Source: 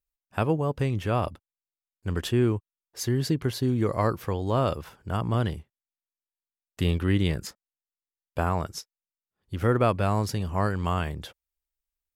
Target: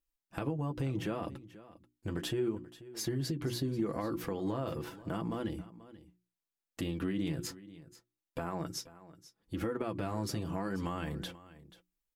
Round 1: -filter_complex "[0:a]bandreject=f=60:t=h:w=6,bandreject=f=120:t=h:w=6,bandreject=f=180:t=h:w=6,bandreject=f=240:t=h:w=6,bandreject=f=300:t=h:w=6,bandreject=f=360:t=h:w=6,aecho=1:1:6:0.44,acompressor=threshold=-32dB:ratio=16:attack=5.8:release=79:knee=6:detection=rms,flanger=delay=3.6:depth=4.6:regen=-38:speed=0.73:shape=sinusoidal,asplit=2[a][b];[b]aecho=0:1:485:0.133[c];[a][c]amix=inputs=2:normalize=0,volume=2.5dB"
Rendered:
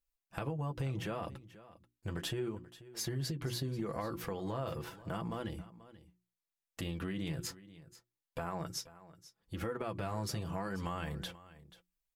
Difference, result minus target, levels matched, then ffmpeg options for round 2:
250 Hz band -2.5 dB
-filter_complex "[0:a]bandreject=f=60:t=h:w=6,bandreject=f=120:t=h:w=6,bandreject=f=180:t=h:w=6,bandreject=f=240:t=h:w=6,bandreject=f=300:t=h:w=6,bandreject=f=360:t=h:w=6,aecho=1:1:6:0.44,acompressor=threshold=-32dB:ratio=16:attack=5.8:release=79:knee=6:detection=rms,equalizer=f=290:w=1.8:g=9,flanger=delay=3.6:depth=4.6:regen=-38:speed=0.73:shape=sinusoidal,asplit=2[a][b];[b]aecho=0:1:485:0.133[c];[a][c]amix=inputs=2:normalize=0,volume=2.5dB"

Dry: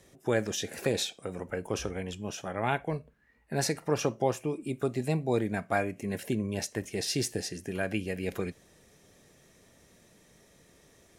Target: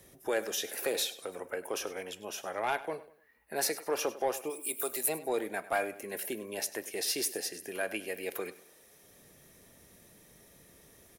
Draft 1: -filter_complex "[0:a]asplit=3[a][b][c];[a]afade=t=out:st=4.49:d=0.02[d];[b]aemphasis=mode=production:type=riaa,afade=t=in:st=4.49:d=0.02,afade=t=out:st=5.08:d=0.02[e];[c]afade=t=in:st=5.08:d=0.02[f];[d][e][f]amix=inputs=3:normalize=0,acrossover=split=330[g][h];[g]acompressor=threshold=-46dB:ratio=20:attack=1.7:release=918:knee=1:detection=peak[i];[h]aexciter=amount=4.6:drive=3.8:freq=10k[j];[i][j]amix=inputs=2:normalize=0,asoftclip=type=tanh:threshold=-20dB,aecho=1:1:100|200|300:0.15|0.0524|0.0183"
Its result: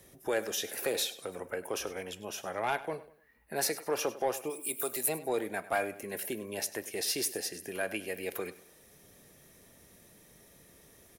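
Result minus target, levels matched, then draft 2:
compressor: peak gain reduction -9 dB
-filter_complex "[0:a]asplit=3[a][b][c];[a]afade=t=out:st=4.49:d=0.02[d];[b]aemphasis=mode=production:type=riaa,afade=t=in:st=4.49:d=0.02,afade=t=out:st=5.08:d=0.02[e];[c]afade=t=in:st=5.08:d=0.02[f];[d][e][f]amix=inputs=3:normalize=0,acrossover=split=330[g][h];[g]acompressor=threshold=-55.5dB:ratio=20:attack=1.7:release=918:knee=1:detection=peak[i];[h]aexciter=amount=4.6:drive=3.8:freq=10k[j];[i][j]amix=inputs=2:normalize=0,asoftclip=type=tanh:threshold=-20dB,aecho=1:1:100|200|300:0.15|0.0524|0.0183"

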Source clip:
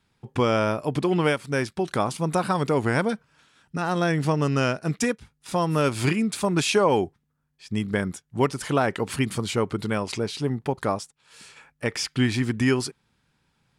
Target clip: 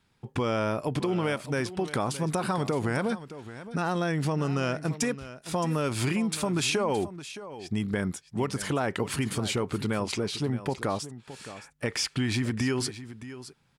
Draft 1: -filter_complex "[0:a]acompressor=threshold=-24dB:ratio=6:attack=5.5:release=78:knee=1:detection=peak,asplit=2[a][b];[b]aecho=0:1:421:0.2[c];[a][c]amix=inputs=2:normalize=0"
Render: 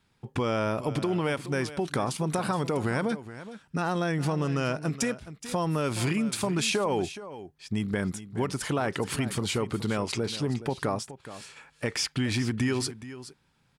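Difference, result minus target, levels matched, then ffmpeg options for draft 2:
echo 0.197 s early
-filter_complex "[0:a]acompressor=threshold=-24dB:ratio=6:attack=5.5:release=78:knee=1:detection=peak,asplit=2[a][b];[b]aecho=0:1:618:0.2[c];[a][c]amix=inputs=2:normalize=0"

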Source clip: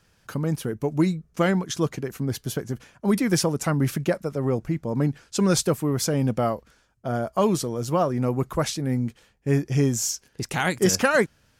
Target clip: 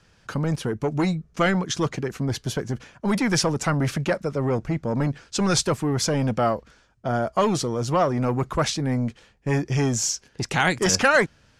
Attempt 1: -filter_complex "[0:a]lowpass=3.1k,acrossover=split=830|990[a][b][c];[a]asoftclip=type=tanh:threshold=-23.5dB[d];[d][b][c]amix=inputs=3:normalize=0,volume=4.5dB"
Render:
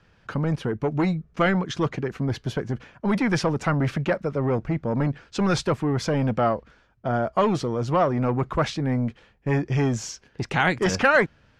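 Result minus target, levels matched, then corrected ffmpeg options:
8000 Hz band -10.5 dB
-filter_complex "[0:a]lowpass=6.8k,acrossover=split=830|990[a][b][c];[a]asoftclip=type=tanh:threshold=-23.5dB[d];[d][b][c]amix=inputs=3:normalize=0,volume=4.5dB"

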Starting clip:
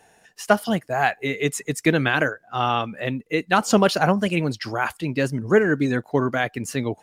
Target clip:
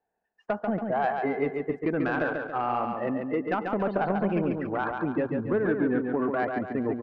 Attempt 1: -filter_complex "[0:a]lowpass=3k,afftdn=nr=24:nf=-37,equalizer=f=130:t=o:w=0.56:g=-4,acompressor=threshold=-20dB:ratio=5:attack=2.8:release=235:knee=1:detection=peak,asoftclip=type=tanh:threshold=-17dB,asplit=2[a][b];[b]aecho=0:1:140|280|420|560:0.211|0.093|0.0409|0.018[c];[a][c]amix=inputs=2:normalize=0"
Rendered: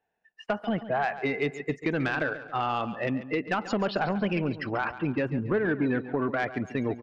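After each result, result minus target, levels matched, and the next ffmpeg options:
4000 Hz band +11.5 dB; echo-to-direct -9 dB; 125 Hz band +3.0 dB
-filter_complex "[0:a]lowpass=1.3k,afftdn=nr=24:nf=-37,equalizer=f=130:t=o:w=0.56:g=-4,acompressor=threshold=-20dB:ratio=5:attack=2.8:release=235:knee=1:detection=peak,asoftclip=type=tanh:threshold=-17dB,asplit=2[a][b];[b]aecho=0:1:140|280|420|560|700:0.596|0.262|0.115|0.0507|0.0223[c];[a][c]amix=inputs=2:normalize=0"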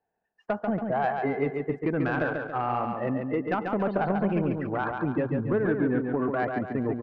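125 Hz band +4.0 dB
-filter_complex "[0:a]lowpass=1.3k,afftdn=nr=24:nf=-37,equalizer=f=130:t=o:w=0.56:g=-12,acompressor=threshold=-20dB:ratio=5:attack=2.8:release=235:knee=1:detection=peak,asoftclip=type=tanh:threshold=-17dB,asplit=2[a][b];[b]aecho=0:1:140|280|420|560|700:0.596|0.262|0.115|0.0507|0.0223[c];[a][c]amix=inputs=2:normalize=0"

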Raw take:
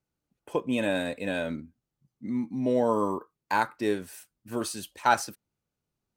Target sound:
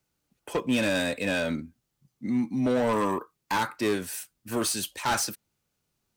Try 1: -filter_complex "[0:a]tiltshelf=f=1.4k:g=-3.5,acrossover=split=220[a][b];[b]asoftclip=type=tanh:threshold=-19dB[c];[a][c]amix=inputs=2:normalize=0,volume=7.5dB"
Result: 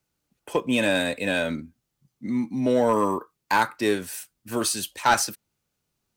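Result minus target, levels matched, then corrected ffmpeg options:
soft clip: distortion -8 dB
-filter_complex "[0:a]tiltshelf=f=1.4k:g=-3.5,acrossover=split=220[a][b];[b]asoftclip=type=tanh:threshold=-30dB[c];[a][c]amix=inputs=2:normalize=0,volume=7.5dB"

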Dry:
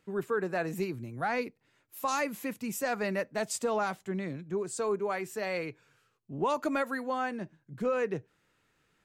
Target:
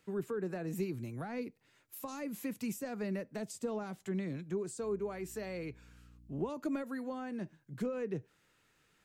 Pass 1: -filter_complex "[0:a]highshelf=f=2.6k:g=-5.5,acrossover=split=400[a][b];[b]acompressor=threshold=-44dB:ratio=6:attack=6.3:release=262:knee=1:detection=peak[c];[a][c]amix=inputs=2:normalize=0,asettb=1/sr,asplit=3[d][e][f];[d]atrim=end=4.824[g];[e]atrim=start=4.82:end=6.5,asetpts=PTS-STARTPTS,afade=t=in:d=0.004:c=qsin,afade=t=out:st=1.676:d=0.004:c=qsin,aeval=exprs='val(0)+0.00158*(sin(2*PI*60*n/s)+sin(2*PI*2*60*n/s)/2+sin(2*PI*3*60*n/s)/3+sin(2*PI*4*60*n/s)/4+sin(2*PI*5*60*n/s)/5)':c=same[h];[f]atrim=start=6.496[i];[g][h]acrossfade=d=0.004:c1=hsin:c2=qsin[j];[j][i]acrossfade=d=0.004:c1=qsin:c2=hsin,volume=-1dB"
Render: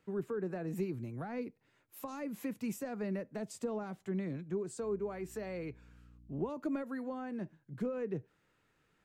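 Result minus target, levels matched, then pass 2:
4000 Hz band -4.0 dB
-filter_complex "[0:a]highshelf=f=2.6k:g=5,acrossover=split=400[a][b];[b]acompressor=threshold=-44dB:ratio=6:attack=6.3:release=262:knee=1:detection=peak[c];[a][c]amix=inputs=2:normalize=0,asettb=1/sr,asplit=3[d][e][f];[d]atrim=end=4.824[g];[e]atrim=start=4.82:end=6.5,asetpts=PTS-STARTPTS,afade=t=in:d=0.004:c=qsin,afade=t=out:st=1.676:d=0.004:c=qsin,aeval=exprs='val(0)+0.00158*(sin(2*PI*60*n/s)+sin(2*PI*2*60*n/s)/2+sin(2*PI*3*60*n/s)/3+sin(2*PI*4*60*n/s)/4+sin(2*PI*5*60*n/s)/5)':c=same[h];[f]atrim=start=6.496[i];[g][h]acrossfade=d=0.004:c1=hsin:c2=qsin[j];[j][i]acrossfade=d=0.004:c1=qsin:c2=hsin,volume=-1dB"

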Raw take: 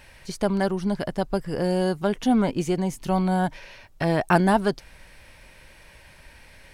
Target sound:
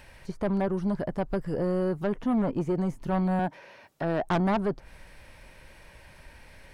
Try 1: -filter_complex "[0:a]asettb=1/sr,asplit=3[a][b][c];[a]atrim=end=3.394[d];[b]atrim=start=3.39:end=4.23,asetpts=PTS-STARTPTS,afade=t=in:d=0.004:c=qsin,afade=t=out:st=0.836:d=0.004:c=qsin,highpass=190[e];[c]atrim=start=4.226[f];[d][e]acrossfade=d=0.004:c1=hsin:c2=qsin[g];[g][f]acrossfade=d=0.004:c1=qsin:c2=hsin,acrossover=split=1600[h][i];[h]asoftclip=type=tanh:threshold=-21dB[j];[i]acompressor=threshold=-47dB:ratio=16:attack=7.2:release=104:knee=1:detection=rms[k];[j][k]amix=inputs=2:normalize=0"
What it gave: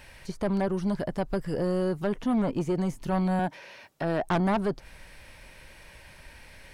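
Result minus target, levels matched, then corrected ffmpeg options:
compressor: peak gain reduction -8 dB
-filter_complex "[0:a]asettb=1/sr,asplit=3[a][b][c];[a]atrim=end=3.394[d];[b]atrim=start=3.39:end=4.23,asetpts=PTS-STARTPTS,afade=t=in:d=0.004:c=qsin,afade=t=out:st=0.836:d=0.004:c=qsin,highpass=190[e];[c]atrim=start=4.226[f];[d][e]acrossfade=d=0.004:c1=hsin:c2=qsin[g];[g][f]acrossfade=d=0.004:c1=qsin:c2=hsin,acrossover=split=1600[h][i];[h]asoftclip=type=tanh:threshold=-21dB[j];[i]acompressor=threshold=-55.5dB:ratio=16:attack=7.2:release=104:knee=1:detection=rms[k];[j][k]amix=inputs=2:normalize=0"

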